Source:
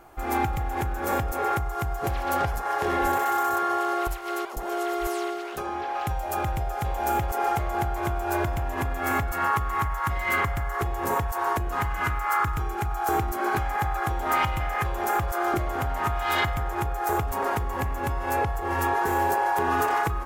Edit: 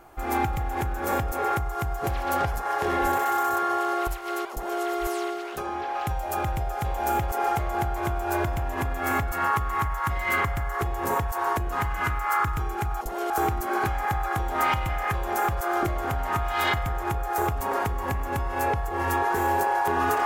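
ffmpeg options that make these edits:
-filter_complex "[0:a]asplit=3[a][b][c];[a]atrim=end=13.012[d];[b]atrim=start=4.518:end=4.812[e];[c]atrim=start=13.008[f];[d][e]acrossfade=d=0.004:c1=hsin:c2=hsin[g];[g][f]acrossfade=d=0.004:c1=hsin:c2=hsin"

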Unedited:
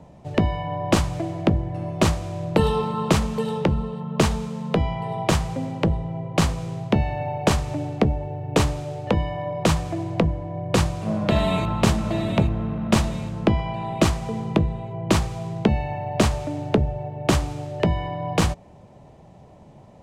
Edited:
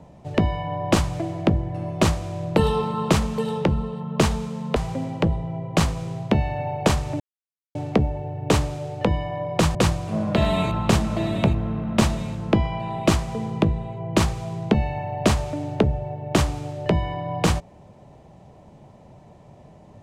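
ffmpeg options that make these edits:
-filter_complex "[0:a]asplit=4[a][b][c][d];[a]atrim=end=4.762[e];[b]atrim=start=5.368:end=7.81,asetpts=PTS-STARTPTS,afade=t=out:st=2.438:d=0.004:c=hsin,apad=pad_dur=0.55[f];[c]atrim=start=7.81:end=9.812,asetpts=PTS-STARTPTS,afade=t=in:d=0.004:c=hsin[g];[d]atrim=start=10.688[h];[f][g]concat=n=2:v=0:a=1[i];[e][i]acrossfade=d=0.004:c1=hsin:c2=hsin[j];[j][h]acrossfade=d=0.004:c1=hsin:c2=hsin"

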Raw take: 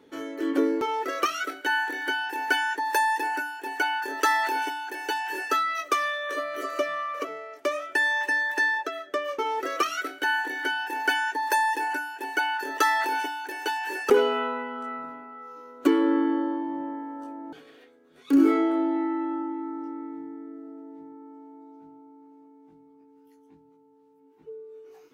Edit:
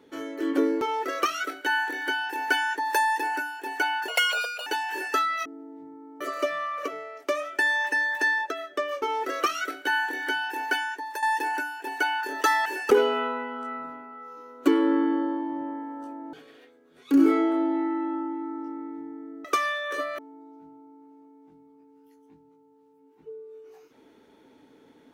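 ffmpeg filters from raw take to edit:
-filter_complex "[0:a]asplit=9[a][b][c][d][e][f][g][h][i];[a]atrim=end=4.084[j];[b]atrim=start=4.08:end=5.04,asetpts=PTS-STARTPTS,asetrate=72324,aresample=44100[k];[c]atrim=start=5.036:end=5.832[l];[d]atrim=start=20.638:end=21.392[m];[e]atrim=start=6.568:end=11.59,asetpts=PTS-STARTPTS,afade=t=out:st=4.312:d=0.71:silence=0.251189[n];[f]atrim=start=11.59:end=13.022,asetpts=PTS-STARTPTS,afade=t=in:d=0.004:c=hsin:silence=0.251189[o];[g]atrim=start=13.848:end=20.642[p];[h]atrim=start=5.828:end=6.572[q];[i]atrim=start=21.388[r];[j][k]acrossfade=d=0.004:c1=hsin:c2=hsin[s];[s][l]acrossfade=d=0.004:c1=hsin:c2=hsin[t];[t][m]acrossfade=d=0.004:c1=hsin:c2=hsin[u];[n][o]concat=n=2:v=0:a=1[v];[u][v]acrossfade=d=0.004:c1=hsin:c2=hsin[w];[w][p]acrossfade=d=0.004:c1=hsin:c2=hsin[x];[x][q]acrossfade=d=0.004:c1=hsin:c2=hsin[y];[y][r]acrossfade=d=0.004:c1=hsin:c2=hsin"

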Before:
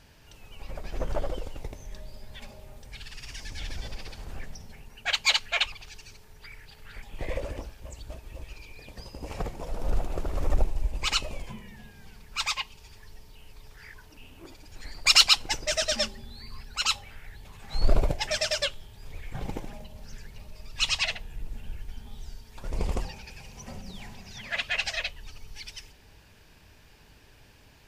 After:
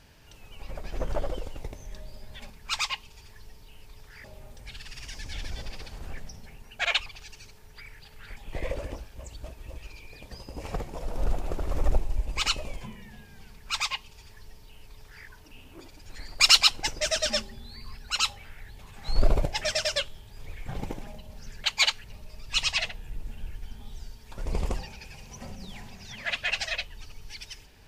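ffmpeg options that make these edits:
-filter_complex "[0:a]asplit=6[a][b][c][d][e][f];[a]atrim=end=2.502[g];[b]atrim=start=12.168:end=13.912[h];[c]atrim=start=2.498:end=5.112[i];[d]atrim=start=5.508:end=20.302[j];[e]atrim=start=5.108:end=5.512[k];[f]atrim=start=20.298[l];[g][h]acrossfade=d=0.004:c1=hsin:c2=hsin[m];[m][i]acrossfade=d=0.004:c1=hsin:c2=hsin[n];[n][j]acrossfade=d=0.004:c1=hsin:c2=hsin[o];[o][k]acrossfade=d=0.004:c1=hsin:c2=hsin[p];[p][l]acrossfade=d=0.004:c1=hsin:c2=hsin"

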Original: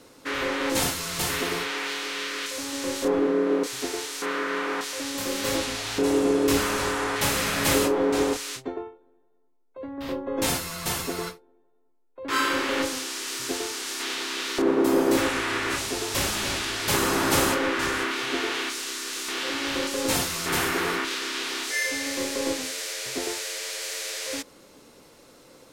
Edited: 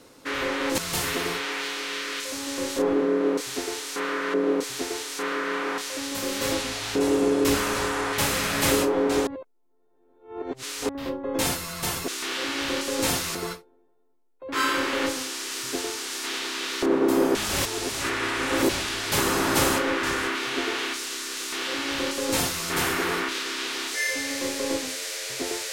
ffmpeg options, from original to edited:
-filter_complex "[0:a]asplit=9[a][b][c][d][e][f][g][h][i];[a]atrim=end=0.782[j];[b]atrim=start=1.038:end=4.602[k];[c]atrim=start=3.368:end=8.302[l];[d]atrim=start=8.298:end=9.922,asetpts=PTS-STARTPTS,areverse[m];[e]atrim=start=9.918:end=11.112[n];[f]atrim=start=19.138:end=20.412[o];[g]atrim=start=11.108:end=15.112[p];[h]atrim=start=15.108:end=16.452,asetpts=PTS-STARTPTS,areverse[q];[i]atrim=start=16.448[r];[j][k]acrossfade=d=0.004:c1=hsin:c2=hsin[s];[s][l]acrossfade=d=0.004:c1=hsin:c2=hsin[t];[t][m]acrossfade=d=0.004:c1=hsin:c2=hsin[u];[u][n]acrossfade=d=0.004:c1=hsin:c2=hsin[v];[v][o]acrossfade=d=0.004:c1=hsin:c2=hsin[w];[w][p]acrossfade=d=0.004:c1=hsin:c2=hsin[x];[x][q]acrossfade=d=0.004:c1=hsin:c2=hsin[y];[y][r]acrossfade=d=0.004:c1=hsin:c2=hsin"

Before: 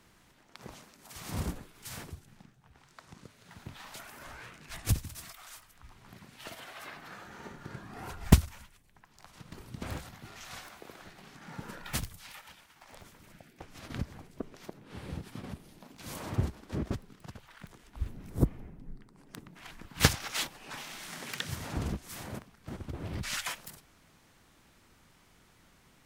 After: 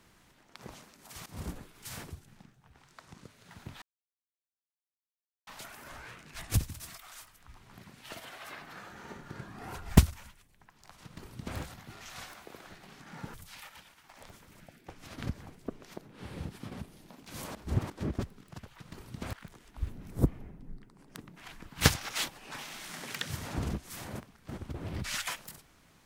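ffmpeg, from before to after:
-filter_complex "[0:a]asplit=8[a][b][c][d][e][f][g][h];[a]atrim=end=1.26,asetpts=PTS-STARTPTS,afade=t=out:st=1.256:d=0.004:c=hsin:silence=0.1[i];[b]atrim=start=1.26:end=3.82,asetpts=PTS-STARTPTS,afade=t=in:d=0.36:silence=0.1,afade=t=out:st=2.556:d=0.004:c=hsin,apad=pad_dur=1.65[j];[c]atrim=start=3.82:end=11.692,asetpts=PTS-STARTPTS,afade=t=in:d=0.004:c=hsin[k];[d]atrim=start=12.058:end=16.272[l];[e]atrim=start=16.268:end=16.622,asetpts=PTS-STARTPTS,areverse[m];[f]atrim=start=16.618:end=17.522[n];[g]atrim=start=9.398:end=9.932[o];[h]atrim=start=17.518[p];[i][j][k]concat=n=3:v=0:a=1[q];[q][l]acrossfade=d=0.004:c1=hsin:c2=hsin[r];[r][m]acrossfade=d=0.004:c1=hsin:c2=hsin[s];[s][n]acrossfade=d=0.004:c1=hsin:c2=hsin[t];[t][o]acrossfade=d=0.004:c1=hsin:c2=hsin[u];[u][p]acrossfade=d=0.004:c1=hsin:c2=hsin"

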